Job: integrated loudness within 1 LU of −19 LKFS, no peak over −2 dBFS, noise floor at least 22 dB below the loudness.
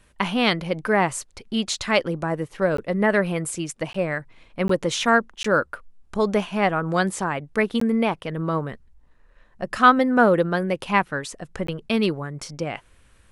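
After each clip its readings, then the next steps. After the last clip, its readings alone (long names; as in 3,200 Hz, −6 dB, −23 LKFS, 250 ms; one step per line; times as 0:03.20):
number of dropouts 6; longest dropout 14 ms; integrated loudness −23.0 LKFS; sample peak −3.0 dBFS; target loudness −19.0 LKFS
→ repair the gap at 0:02.77/0:03.93/0:04.68/0:05.43/0:07.80/0:11.67, 14 ms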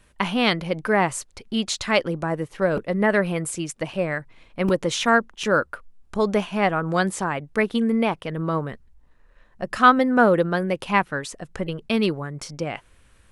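number of dropouts 0; integrated loudness −23.0 LKFS; sample peak −3.0 dBFS; target loudness −19.0 LKFS
→ level +4 dB
brickwall limiter −2 dBFS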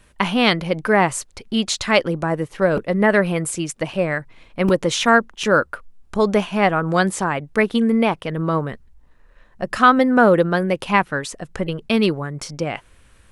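integrated loudness −19.5 LKFS; sample peak −2.0 dBFS; background noise floor −52 dBFS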